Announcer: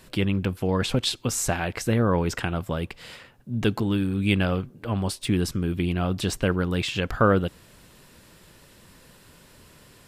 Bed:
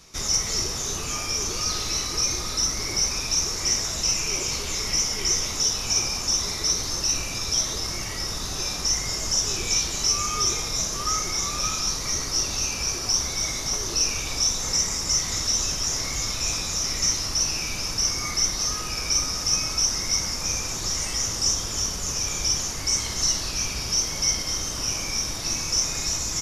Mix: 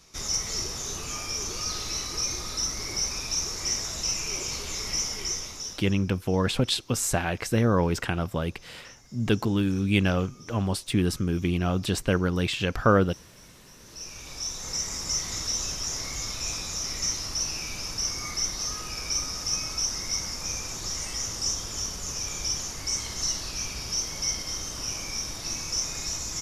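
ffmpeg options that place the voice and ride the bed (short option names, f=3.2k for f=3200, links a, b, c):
-filter_complex "[0:a]adelay=5650,volume=-0.5dB[a];[1:a]volume=18dB,afade=t=out:st=5.06:d=0.9:silence=0.0668344,afade=t=in:st=13.78:d=1.26:silence=0.0707946[b];[a][b]amix=inputs=2:normalize=0"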